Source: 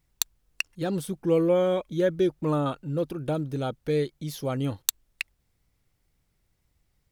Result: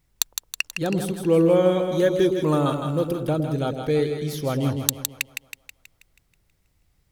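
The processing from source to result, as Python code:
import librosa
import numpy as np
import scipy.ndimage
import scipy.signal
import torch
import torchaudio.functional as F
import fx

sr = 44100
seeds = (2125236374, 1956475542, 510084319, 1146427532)

p1 = fx.high_shelf(x, sr, hz=4500.0, db=8.0, at=(1.79, 3.2))
p2 = p1 + fx.echo_split(p1, sr, split_hz=620.0, low_ms=109, high_ms=161, feedback_pct=52, wet_db=-6.0, dry=0)
y = p2 * librosa.db_to_amplitude(3.5)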